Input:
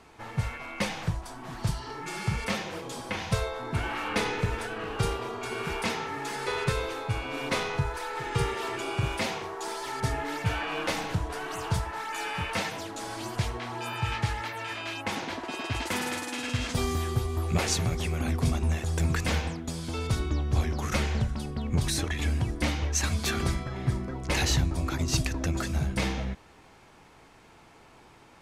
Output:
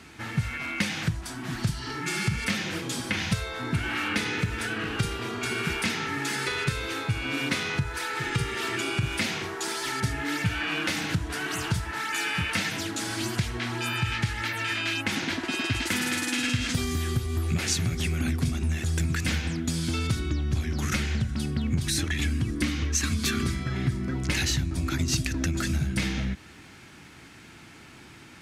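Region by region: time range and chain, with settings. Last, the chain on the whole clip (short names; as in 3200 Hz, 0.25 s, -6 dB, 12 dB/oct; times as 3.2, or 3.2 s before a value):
22.31–23.51 bell 420 Hz -7.5 dB 2.6 oct + small resonant body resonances 270/420/1100 Hz, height 11 dB, ringing for 25 ms
whole clip: compressor, threshold -31 dBFS; HPF 66 Hz; band shelf 690 Hz -10.5 dB; gain +9 dB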